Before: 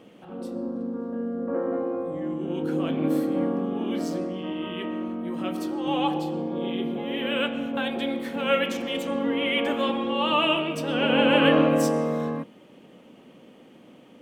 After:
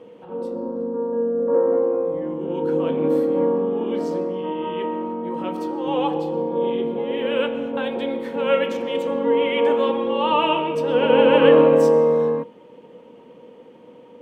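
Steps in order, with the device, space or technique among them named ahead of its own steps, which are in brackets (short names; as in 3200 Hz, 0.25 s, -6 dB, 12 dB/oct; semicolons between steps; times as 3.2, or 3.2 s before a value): inside a helmet (high shelf 5300 Hz -9.5 dB; small resonant body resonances 480/930 Hz, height 16 dB, ringing for 70 ms)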